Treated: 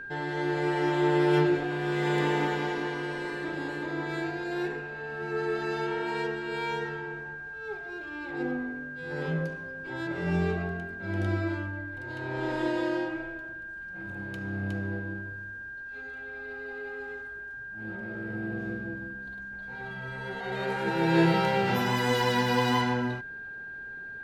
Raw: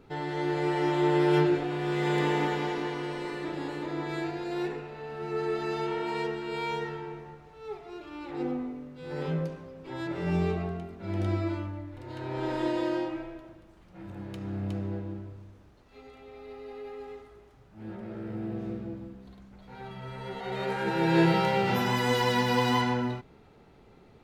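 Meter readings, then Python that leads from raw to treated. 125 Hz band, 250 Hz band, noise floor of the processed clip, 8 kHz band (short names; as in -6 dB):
0.0 dB, 0.0 dB, -41 dBFS, n/a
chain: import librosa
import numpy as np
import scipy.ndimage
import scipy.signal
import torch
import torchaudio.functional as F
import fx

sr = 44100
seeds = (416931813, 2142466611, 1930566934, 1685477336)

y = x + 10.0 ** (-38.0 / 20.0) * np.sin(2.0 * np.pi * 1600.0 * np.arange(len(x)) / sr)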